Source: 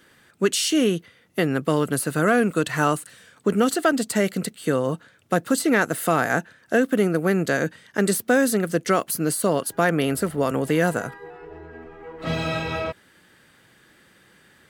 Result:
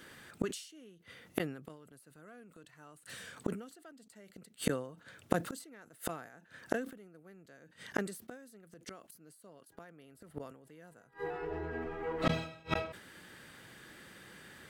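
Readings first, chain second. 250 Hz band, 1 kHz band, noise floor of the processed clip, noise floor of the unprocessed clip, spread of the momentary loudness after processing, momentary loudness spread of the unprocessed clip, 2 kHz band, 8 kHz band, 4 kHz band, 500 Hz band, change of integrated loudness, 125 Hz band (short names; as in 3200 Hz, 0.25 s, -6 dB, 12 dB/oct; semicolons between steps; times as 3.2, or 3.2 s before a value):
-19.0 dB, -18.0 dB, -65 dBFS, -57 dBFS, 20 LU, 11 LU, -19.0 dB, -21.0 dB, -17.0 dB, -18.5 dB, -17.0 dB, -17.0 dB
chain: flipped gate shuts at -18 dBFS, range -37 dB; sustainer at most 94 dB/s; gain +1.5 dB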